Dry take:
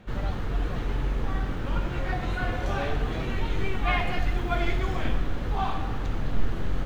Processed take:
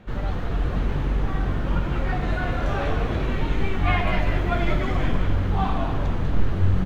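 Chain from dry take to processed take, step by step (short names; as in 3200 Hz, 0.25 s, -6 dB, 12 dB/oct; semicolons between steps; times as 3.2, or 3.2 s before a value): high shelf 4000 Hz -6 dB; on a send: frequency-shifting echo 0.195 s, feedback 48%, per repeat -94 Hz, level -5 dB; on the sum: gain +2.5 dB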